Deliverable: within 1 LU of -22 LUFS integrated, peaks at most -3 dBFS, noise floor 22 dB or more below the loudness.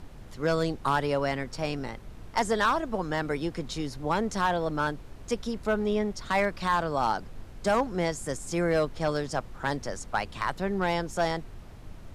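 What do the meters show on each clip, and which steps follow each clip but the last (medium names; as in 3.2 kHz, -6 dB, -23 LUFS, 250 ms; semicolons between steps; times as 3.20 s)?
clipped samples 0.4%; clipping level -17.0 dBFS; noise floor -45 dBFS; noise floor target -51 dBFS; loudness -29.0 LUFS; peak level -17.0 dBFS; loudness target -22.0 LUFS
-> clip repair -17 dBFS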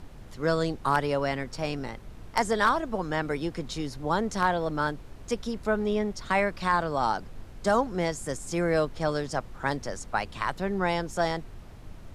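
clipped samples 0.0%; noise floor -45 dBFS; noise floor target -51 dBFS
-> noise print and reduce 6 dB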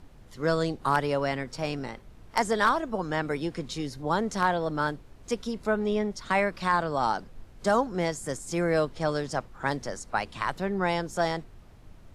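noise floor -51 dBFS; loudness -28.5 LUFS; peak level -8.5 dBFS; loudness target -22.0 LUFS
-> trim +6.5 dB; peak limiter -3 dBFS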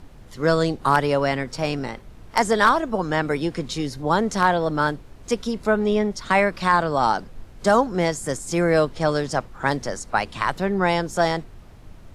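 loudness -22.0 LUFS; peak level -3.0 dBFS; noise floor -44 dBFS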